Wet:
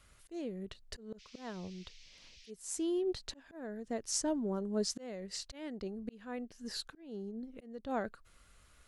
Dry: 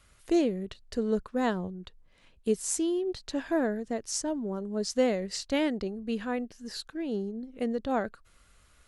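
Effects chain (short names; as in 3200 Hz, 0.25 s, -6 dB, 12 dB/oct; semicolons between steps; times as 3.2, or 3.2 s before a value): auto swell 0.624 s; 1.18–2.49 band noise 2100–5900 Hz -58 dBFS; gain -2 dB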